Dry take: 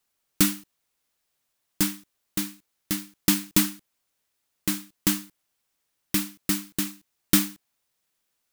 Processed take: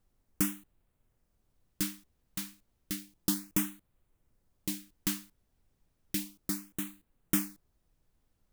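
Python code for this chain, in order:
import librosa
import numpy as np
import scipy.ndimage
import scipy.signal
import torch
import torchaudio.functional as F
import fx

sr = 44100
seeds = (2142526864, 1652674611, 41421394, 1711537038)

y = fx.filter_lfo_notch(x, sr, shape='sine', hz=0.32, low_hz=370.0, high_hz=5500.0, q=1.0)
y = fx.dmg_noise_colour(y, sr, seeds[0], colour='brown', level_db=-63.0)
y = F.gain(torch.from_numpy(y), -8.5).numpy()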